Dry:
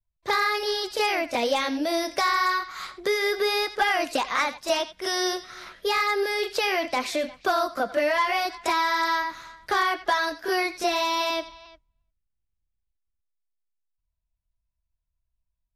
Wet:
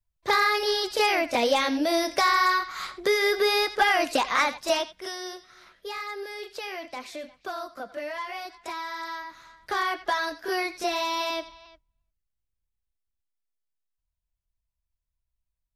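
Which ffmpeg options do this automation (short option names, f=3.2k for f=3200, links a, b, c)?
-af "volume=9.5dB,afade=t=out:st=4.6:d=0.58:silence=0.237137,afade=t=in:st=9.21:d=0.69:silence=0.398107"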